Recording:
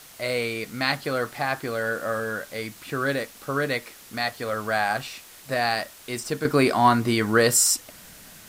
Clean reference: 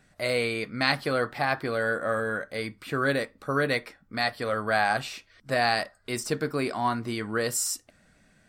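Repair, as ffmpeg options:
-af "adeclick=t=4,afwtdn=0.005,asetnsamples=n=441:p=0,asendcmd='6.45 volume volume -9dB',volume=1"

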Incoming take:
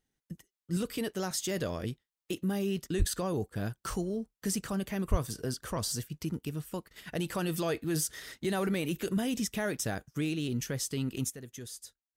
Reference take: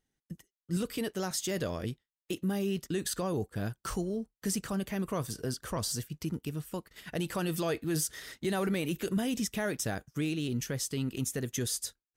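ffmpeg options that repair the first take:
-filter_complex "[0:a]asplit=3[s0][s1][s2];[s0]afade=t=out:st=2.98:d=0.02[s3];[s1]highpass=f=140:w=0.5412,highpass=f=140:w=1.3066,afade=t=in:st=2.98:d=0.02,afade=t=out:st=3.1:d=0.02[s4];[s2]afade=t=in:st=3.1:d=0.02[s5];[s3][s4][s5]amix=inputs=3:normalize=0,asplit=3[s6][s7][s8];[s6]afade=t=out:st=5.1:d=0.02[s9];[s7]highpass=f=140:w=0.5412,highpass=f=140:w=1.3066,afade=t=in:st=5.1:d=0.02,afade=t=out:st=5.22:d=0.02[s10];[s8]afade=t=in:st=5.22:d=0.02[s11];[s9][s10][s11]amix=inputs=3:normalize=0,asetnsamples=n=441:p=0,asendcmd='11.3 volume volume 11dB',volume=1"

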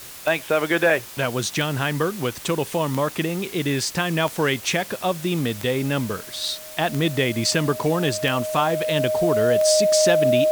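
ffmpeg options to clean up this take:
-af "adeclick=t=4,bandreject=f=620:w=30,afwtdn=0.011"

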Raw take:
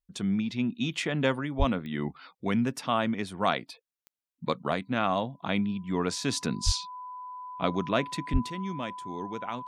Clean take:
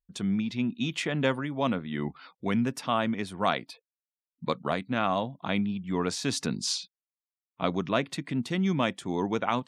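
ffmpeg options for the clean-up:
-filter_complex "[0:a]adeclick=t=4,bandreject=f=1000:w=30,asplit=3[s0][s1][s2];[s0]afade=t=out:st=1.58:d=0.02[s3];[s1]highpass=f=140:w=0.5412,highpass=f=140:w=1.3066,afade=t=in:st=1.58:d=0.02,afade=t=out:st=1.7:d=0.02[s4];[s2]afade=t=in:st=1.7:d=0.02[s5];[s3][s4][s5]amix=inputs=3:normalize=0,asplit=3[s6][s7][s8];[s6]afade=t=out:st=6.65:d=0.02[s9];[s7]highpass=f=140:w=0.5412,highpass=f=140:w=1.3066,afade=t=in:st=6.65:d=0.02,afade=t=out:st=6.77:d=0.02[s10];[s8]afade=t=in:st=6.77:d=0.02[s11];[s9][s10][s11]amix=inputs=3:normalize=0,asplit=3[s12][s13][s14];[s12]afade=t=out:st=8.32:d=0.02[s15];[s13]highpass=f=140:w=0.5412,highpass=f=140:w=1.3066,afade=t=in:st=8.32:d=0.02,afade=t=out:st=8.44:d=0.02[s16];[s14]afade=t=in:st=8.44:d=0.02[s17];[s15][s16][s17]amix=inputs=3:normalize=0,asetnsamples=n=441:p=0,asendcmd='8.5 volume volume 8.5dB',volume=1"

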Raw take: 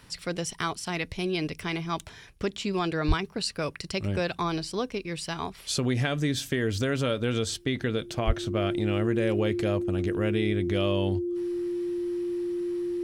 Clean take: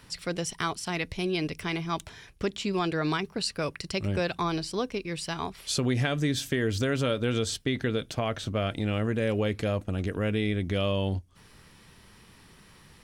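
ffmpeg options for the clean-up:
-filter_complex "[0:a]bandreject=f=350:w=30,asplit=3[s0][s1][s2];[s0]afade=t=out:st=3.07:d=0.02[s3];[s1]highpass=f=140:w=0.5412,highpass=f=140:w=1.3066,afade=t=in:st=3.07:d=0.02,afade=t=out:st=3.19:d=0.02[s4];[s2]afade=t=in:st=3.19:d=0.02[s5];[s3][s4][s5]amix=inputs=3:normalize=0,asplit=3[s6][s7][s8];[s6]afade=t=out:st=8.26:d=0.02[s9];[s7]highpass=f=140:w=0.5412,highpass=f=140:w=1.3066,afade=t=in:st=8.26:d=0.02,afade=t=out:st=8.38:d=0.02[s10];[s8]afade=t=in:st=8.38:d=0.02[s11];[s9][s10][s11]amix=inputs=3:normalize=0"

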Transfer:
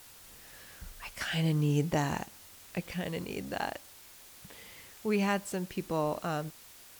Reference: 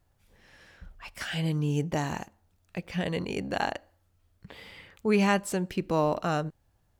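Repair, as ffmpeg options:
-af "afwtdn=0.0022,asetnsamples=n=441:p=0,asendcmd='2.93 volume volume 5.5dB',volume=1"

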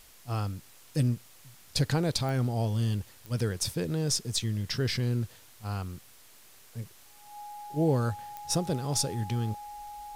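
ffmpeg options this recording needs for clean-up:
-af "adeclick=t=4,bandreject=f=830:w=30,afftdn=nr=22:nf=-54"

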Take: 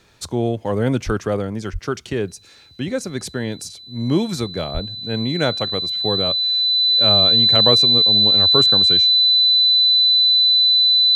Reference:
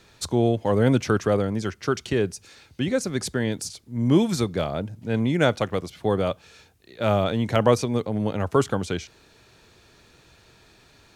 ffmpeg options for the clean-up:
-filter_complex "[0:a]bandreject=f=4000:w=30,asplit=3[s0][s1][s2];[s0]afade=t=out:st=1.05:d=0.02[s3];[s1]highpass=f=140:w=0.5412,highpass=f=140:w=1.3066,afade=t=in:st=1.05:d=0.02,afade=t=out:st=1.17:d=0.02[s4];[s2]afade=t=in:st=1.17:d=0.02[s5];[s3][s4][s5]amix=inputs=3:normalize=0,asplit=3[s6][s7][s8];[s6]afade=t=out:st=1.72:d=0.02[s9];[s7]highpass=f=140:w=0.5412,highpass=f=140:w=1.3066,afade=t=in:st=1.72:d=0.02,afade=t=out:st=1.84:d=0.02[s10];[s8]afade=t=in:st=1.84:d=0.02[s11];[s9][s10][s11]amix=inputs=3:normalize=0,asplit=3[s12][s13][s14];[s12]afade=t=out:st=4.73:d=0.02[s15];[s13]highpass=f=140:w=0.5412,highpass=f=140:w=1.3066,afade=t=in:st=4.73:d=0.02,afade=t=out:st=4.85:d=0.02[s16];[s14]afade=t=in:st=4.85:d=0.02[s17];[s15][s16][s17]amix=inputs=3:normalize=0"

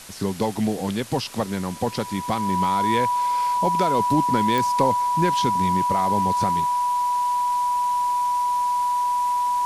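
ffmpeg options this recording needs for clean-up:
-af "adeclick=t=4,bandreject=f=980:w=30,afwtdn=0.01"

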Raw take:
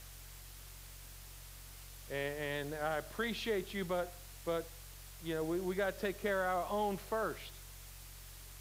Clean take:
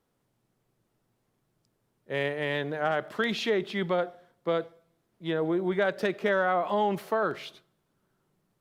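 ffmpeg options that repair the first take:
-af "bandreject=f=45.6:t=h:w=4,bandreject=f=91.2:t=h:w=4,bandreject=f=136.8:t=h:w=4,afwtdn=0.002,asetnsamples=n=441:p=0,asendcmd='1.58 volume volume 9dB',volume=1"

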